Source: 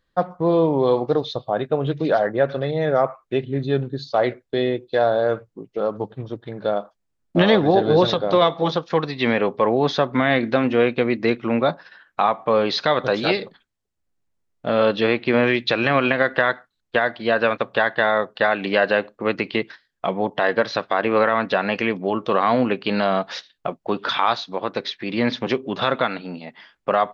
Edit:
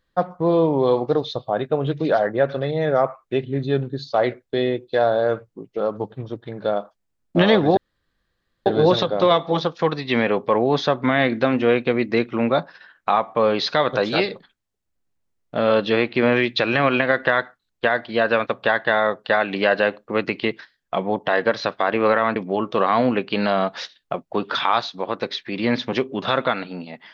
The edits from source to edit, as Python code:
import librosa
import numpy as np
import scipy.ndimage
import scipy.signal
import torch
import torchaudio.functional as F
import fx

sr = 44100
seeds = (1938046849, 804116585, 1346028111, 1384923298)

y = fx.edit(x, sr, fx.insert_room_tone(at_s=7.77, length_s=0.89),
    fx.cut(start_s=21.47, length_s=0.43), tone=tone)